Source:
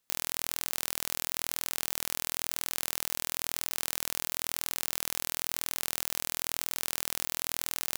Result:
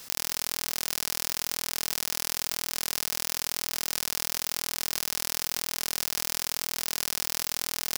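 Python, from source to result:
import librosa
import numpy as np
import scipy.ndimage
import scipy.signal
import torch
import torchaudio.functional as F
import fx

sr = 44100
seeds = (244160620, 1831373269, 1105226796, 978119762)

p1 = fx.peak_eq(x, sr, hz=5200.0, db=6.5, octaves=0.41)
p2 = p1 + fx.echo_single(p1, sr, ms=78, db=-5.0, dry=0)
p3 = fx.env_flatten(p2, sr, amount_pct=70)
y = p3 * librosa.db_to_amplitude(-1.0)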